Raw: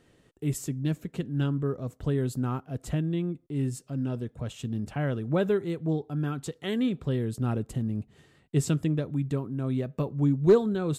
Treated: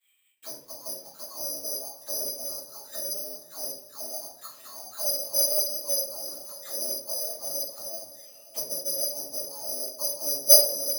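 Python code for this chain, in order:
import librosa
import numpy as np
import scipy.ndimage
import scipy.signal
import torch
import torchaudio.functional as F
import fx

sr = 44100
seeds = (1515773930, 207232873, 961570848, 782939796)

p1 = fx.cycle_switch(x, sr, every=2, mode='muted')
p2 = fx.highpass(p1, sr, hz=130.0, slope=6)
p3 = fx.auto_wah(p2, sr, base_hz=570.0, top_hz=3300.0, q=19.0, full_db=-30.0, direction='down')
p4 = (np.kron(p3[::8], np.eye(8)[0]) * 8)[:len(p3)]
p5 = fx.dynamic_eq(p4, sr, hz=9500.0, q=1.2, threshold_db=-50.0, ratio=4.0, max_db=5)
p6 = p5 + fx.echo_diffused(p5, sr, ms=601, feedback_pct=44, wet_db=-15.5, dry=0)
p7 = fx.room_shoebox(p6, sr, seeds[0], volume_m3=56.0, walls='mixed', distance_m=2.6)
y = F.gain(torch.from_numpy(p7), -2.0).numpy()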